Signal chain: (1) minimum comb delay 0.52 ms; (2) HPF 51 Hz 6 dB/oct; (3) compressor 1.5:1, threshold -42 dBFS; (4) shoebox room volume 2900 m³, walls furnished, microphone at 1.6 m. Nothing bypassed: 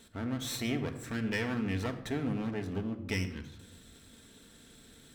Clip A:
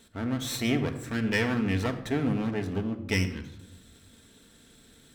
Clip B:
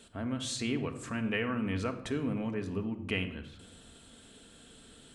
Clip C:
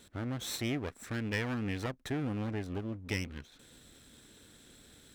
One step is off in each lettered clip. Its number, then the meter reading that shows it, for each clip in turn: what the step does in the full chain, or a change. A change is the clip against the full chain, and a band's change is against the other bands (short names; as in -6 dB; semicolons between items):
3, mean gain reduction 3.0 dB; 1, 125 Hz band -2.5 dB; 4, echo-to-direct -5.5 dB to none